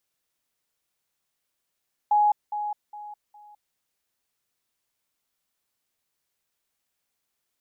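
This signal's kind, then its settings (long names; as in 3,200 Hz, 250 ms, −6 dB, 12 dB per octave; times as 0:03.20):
level staircase 835 Hz −16.5 dBFS, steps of −10 dB, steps 4, 0.21 s 0.20 s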